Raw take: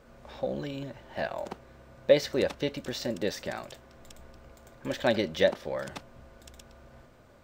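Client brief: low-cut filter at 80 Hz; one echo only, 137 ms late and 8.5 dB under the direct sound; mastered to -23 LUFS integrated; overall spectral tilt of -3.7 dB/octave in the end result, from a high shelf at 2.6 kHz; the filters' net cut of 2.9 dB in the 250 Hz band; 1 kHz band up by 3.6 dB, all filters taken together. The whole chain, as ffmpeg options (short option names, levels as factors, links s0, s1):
-af "highpass=80,equalizer=f=250:t=o:g=-4,equalizer=f=1000:t=o:g=6.5,highshelf=f=2600:g=-7,aecho=1:1:137:0.376,volume=2.24"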